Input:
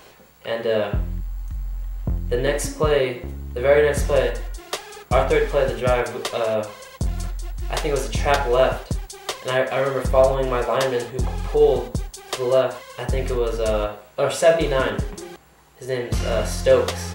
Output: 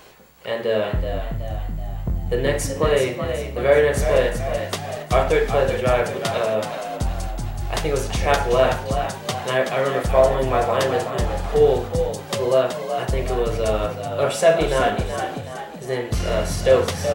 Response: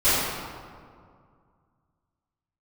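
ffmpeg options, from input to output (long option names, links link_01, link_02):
-filter_complex "[0:a]asplit=7[link_01][link_02][link_03][link_04][link_05][link_06][link_07];[link_02]adelay=376,afreqshift=54,volume=-8dB[link_08];[link_03]adelay=752,afreqshift=108,volume=-14.4dB[link_09];[link_04]adelay=1128,afreqshift=162,volume=-20.8dB[link_10];[link_05]adelay=1504,afreqshift=216,volume=-27.1dB[link_11];[link_06]adelay=1880,afreqshift=270,volume=-33.5dB[link_12];[link_07]adelay=2256,afreqshift=324,volume=-39.9dB[link_13];[link_01][link_08][link_09][link_10][link_11][link_12][link_13]amix=inputs=7:normalize=0"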